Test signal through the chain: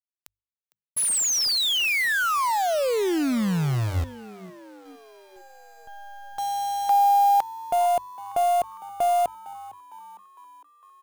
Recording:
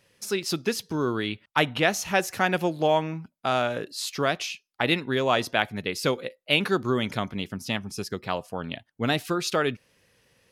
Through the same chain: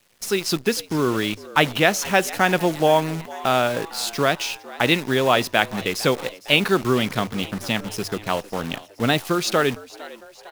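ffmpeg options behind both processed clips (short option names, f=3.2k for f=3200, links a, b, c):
-filter_complex "[0:a]acrusher=bits=7:dc=4:mix=0:aa=0.000001,bandreject=f=50:t=h:w=6,bandreject=f=100:t=h:w=6,asplit=6[a][b][c][d][e][f];[b]adelay=456,afreqshift=96,volume=-19dB[g];[c]adelay=912,afreqshift=192,volume=-23.6dB[h];[d]adelay=1368,afreqshift=288,volume=-28.2dB[i];[e]adelay=1824,afreqshift=384,volume=-32.7dB[j];[f]adelay=2280,afreqshift=480,volume=-37.3dB[k];[a][g][h][i][j][k]amix=inputs=6:normalize=0,volume=5dB"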